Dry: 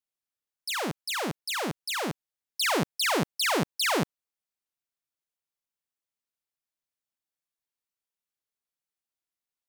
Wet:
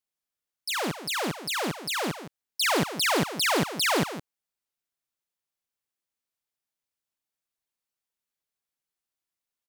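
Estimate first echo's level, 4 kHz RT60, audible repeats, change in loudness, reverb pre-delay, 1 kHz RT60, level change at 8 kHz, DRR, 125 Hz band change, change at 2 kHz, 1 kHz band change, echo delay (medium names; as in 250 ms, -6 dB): -12.0 dB, no reverb, 1, +2.0 dB, no reverb, no reverb, +2.0 dB, no reverb, +2.0 dB, +2.0 dB, +2.0 dB, 163 ms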